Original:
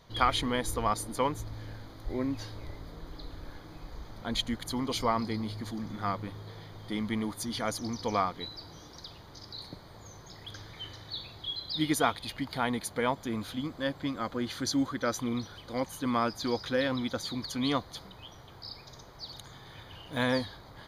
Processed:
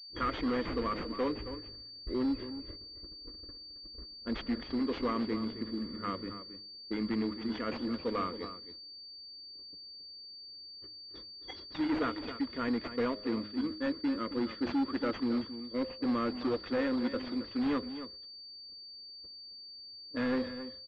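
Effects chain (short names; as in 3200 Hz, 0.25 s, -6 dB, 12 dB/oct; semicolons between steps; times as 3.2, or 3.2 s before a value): gate -39 dBFS, range -21 dB; de-hum 104.3 Hz, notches 8; low-pass opened by the level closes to 580 Hz, open at -29 dBFS; fixed phaser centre 330 Hz, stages 4; notch comb 780 Hz; overloaded stage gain 30 dB; on a send: echo 0.27 s -11.5 dB; on the sum: pulse-width modulation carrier 4600 Hz; gain +3.5 dB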